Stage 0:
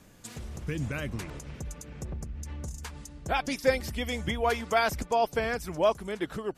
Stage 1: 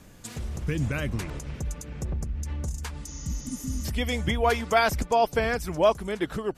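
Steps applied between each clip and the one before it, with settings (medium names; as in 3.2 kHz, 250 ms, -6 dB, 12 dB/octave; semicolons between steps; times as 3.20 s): spectral replace 3.09–3.82 s, 270–6900 Hz before; bass shelf 93 Hz +5.5 dB; trim +3.5 dB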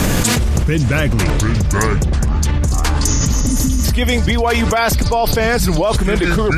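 ever faster or slower copies 449 ms, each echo -6 st, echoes 2, each echo -6 dB; level flattener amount 100%; trim +2 dB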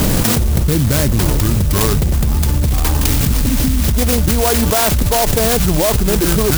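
sampling jitter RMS 0.15 ms; trim +1 dB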